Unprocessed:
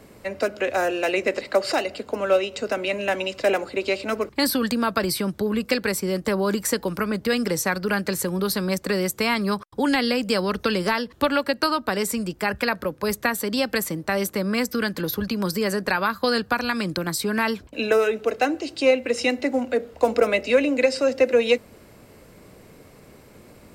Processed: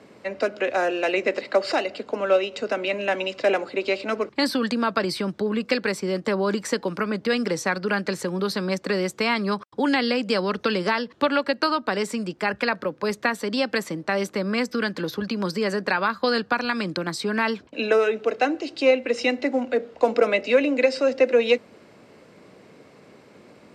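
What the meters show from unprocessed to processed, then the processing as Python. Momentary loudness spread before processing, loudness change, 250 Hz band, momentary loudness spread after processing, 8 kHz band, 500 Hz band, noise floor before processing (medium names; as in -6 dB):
5 LU, -0.5 dB, -1.0 dB, 6 LU, -8.0 dB, 0.0 dB, -50 dBFS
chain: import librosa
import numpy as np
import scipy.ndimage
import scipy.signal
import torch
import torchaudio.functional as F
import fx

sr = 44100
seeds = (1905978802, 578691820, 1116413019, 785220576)

y = fx.bandpass_edges(x, sr, low_hz=170.0, high_hz=5300.0)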